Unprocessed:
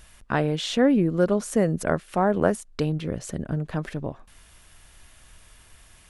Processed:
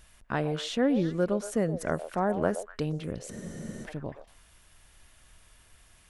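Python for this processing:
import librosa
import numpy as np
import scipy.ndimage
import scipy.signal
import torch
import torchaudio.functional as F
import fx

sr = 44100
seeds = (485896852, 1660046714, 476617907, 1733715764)

y = fx.echo_stepped(x, sr, ms=122, hz=630.0, octaves=1.4, feedback_pct=70, wet_db=-8.0)
y = fx.spec_freeze(y, sr, seeds[0], at_s=3.33, hold_s=0.52)
y = F.gain(torch.from_numpy(y), -6.0).numpy()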